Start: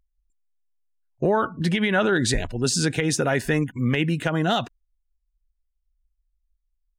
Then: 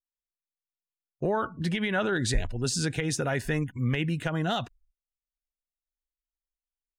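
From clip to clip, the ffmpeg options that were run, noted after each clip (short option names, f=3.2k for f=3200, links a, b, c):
-af "agate=range=-29dB:threshold=-59dB:ratio=16:detection=peak,asubboost=boost=2.5:cutoff=140,volume=-6dB"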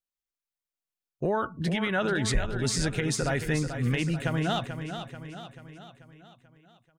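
-af "aecho=1:1:437|874|1311|1748|2185|2622:0.355|0.188|0.0997|0.0528|0.028|0.0148"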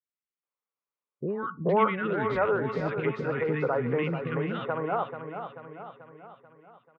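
-filter_complex "[0:a]highpass=270,equalizer=f=290:t=q:w=4:g=-6,equalizer=f=460:t=q:w=4:g=4,equalizer=f=690:t=q:w=4:g=-6,equalizer=f=1.1k:t=q:w=4:g=6,equalizer=f=1.7k:t=q:w=4:g=-9,lowpass=f=2k:w=0.5412,lowpass=f=2k:w=1.3066,acrossover=split=350|1500[a][b][c];[c]adelay=50[d];[b]adelay=430[e];[a][e][d]amix=inputs=3:normalize=0,volume=6.5dB"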